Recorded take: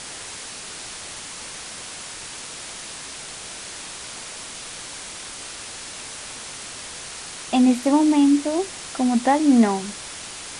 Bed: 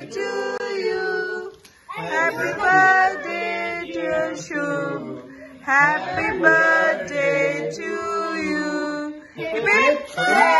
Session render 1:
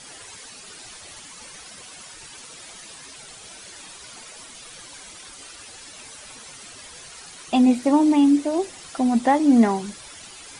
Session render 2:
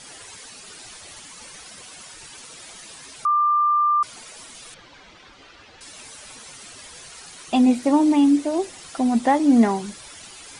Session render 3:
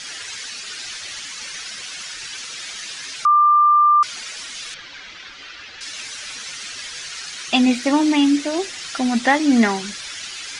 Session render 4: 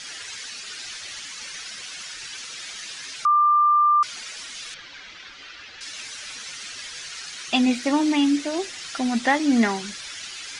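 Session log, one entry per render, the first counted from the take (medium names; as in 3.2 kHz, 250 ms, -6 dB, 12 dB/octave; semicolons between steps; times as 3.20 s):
noise reduction 11 dB, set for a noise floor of -36 dBFS
3.25–4.03 s: bleep 1.19 kHz -15.5 dBFS; 4.74–5.81 s: distance through air 220 m
high-order bell 3 kHz +12 dB 2.6 oct; hum notches 60/120/180 Hz
trim -4 dB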